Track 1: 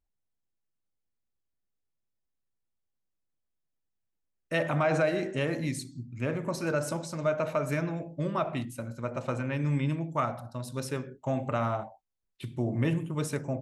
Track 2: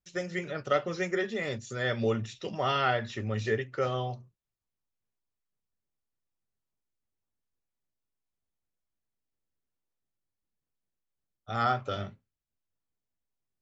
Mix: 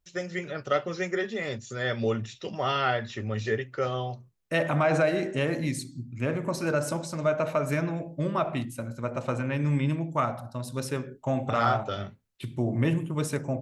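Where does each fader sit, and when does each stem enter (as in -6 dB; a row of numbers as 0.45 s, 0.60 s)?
+2.5 dB, +1.0 dB; 0.00 s, 0.00 s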